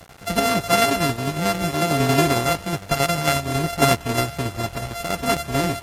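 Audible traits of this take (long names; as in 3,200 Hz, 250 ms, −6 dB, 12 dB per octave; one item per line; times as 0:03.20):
a buzz of ramps at a fixed pitch in blocks of 64 samples
tremolo saw down 11 Hz, depth 50%
a quantiser's noise floor 8 bits, dither none
AAC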